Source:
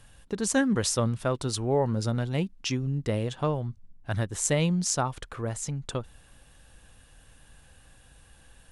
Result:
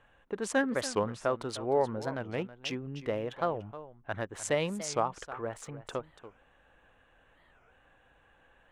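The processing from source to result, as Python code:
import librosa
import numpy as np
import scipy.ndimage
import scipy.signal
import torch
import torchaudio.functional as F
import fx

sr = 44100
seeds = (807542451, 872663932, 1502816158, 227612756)

p1 = fx.wiener(x, sr, points=9)
p2 = fx.bass_treble(p1, sr, bass_db=-15, treble_db=-11)
p3 = p2 + fx.echo_single(p2, sr, ms=305, db=-14.5, dry=0)
y = fx.record_warp(p3, sr, rpm=45.0, depth_cents=250.0)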